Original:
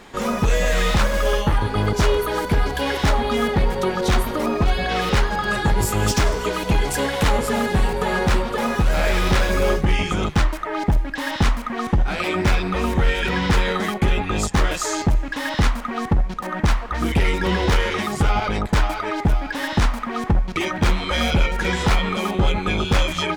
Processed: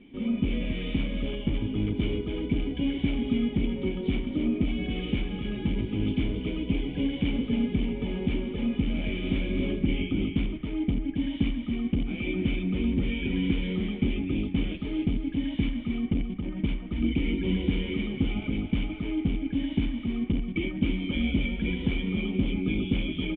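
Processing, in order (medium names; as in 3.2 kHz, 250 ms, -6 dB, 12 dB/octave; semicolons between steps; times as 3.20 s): feedback comb 63 Hz, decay 0.77 s, harmonics all, mix 50%; in parallel at -4 dB: integer overflow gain 16.5 dB; on the sum: cascade formant filter i; delay 276 ms -7 dB; trim +4 dB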